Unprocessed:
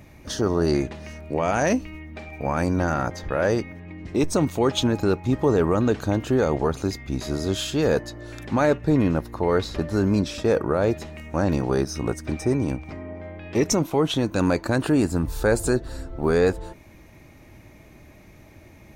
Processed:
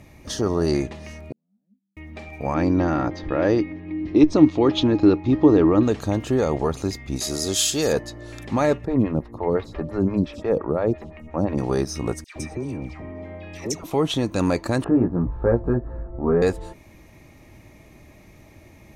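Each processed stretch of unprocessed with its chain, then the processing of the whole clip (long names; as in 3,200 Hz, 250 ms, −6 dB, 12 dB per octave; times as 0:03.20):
0:01.32–0:01.97: flat-topped band-pass 200 Hz, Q 6 + first difference
0:02.54–0:05.83: low-pass filter 4,800 Hz 24 dB per octave + parametric band 310 Hz +15 dB 0.25 octaves
0:07.16–0:07.93: bass and treble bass −5 dB, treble +13 dB + notch filter 1,000 Hz
0:08.85–0:11.58: bass and treble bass +5 dB, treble −12 dB + phaser with staggered stages 5.8 Hz
0:12.24–0:13.84: downward compressor 2.5 to 1, threshold −28 dBFS + all-pass dispersion lows, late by 114 ms, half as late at 1,200 Hz
0:14.84–0:16.42: low-pass filter 1,400 Hz 24 dB per octave + parametric band 870 Hz −3 dB 1.9 octaves + double-tracking delay 17 ms −2.5 dB
whole clip: low-pass filter 12,000 Hz 12 dB per octave; high-shelf EQ 8,700 Hz +4.5 dB; notch filter 1,500 Hz, Q 9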